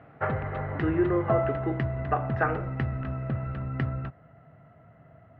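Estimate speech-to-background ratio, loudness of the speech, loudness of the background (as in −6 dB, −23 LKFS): 1.5 dB, −30.0 LKFS, −31.5 LKFS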